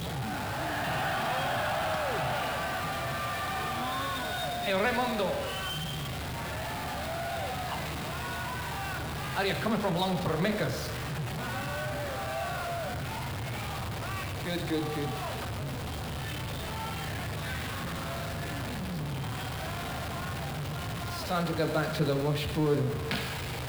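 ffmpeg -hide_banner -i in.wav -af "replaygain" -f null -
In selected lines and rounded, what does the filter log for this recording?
track_gain = +13.1 dB
track_peak = 0.115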